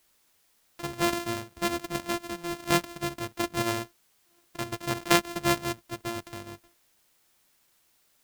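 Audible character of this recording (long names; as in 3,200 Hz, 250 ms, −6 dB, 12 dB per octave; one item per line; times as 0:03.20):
a buzz of ramps at a fixed pitch in blocks of 128 samples
tremolo saw up 0.51 Hz, depth 55%
a quantiser's noise floor 12 bits, dither triangular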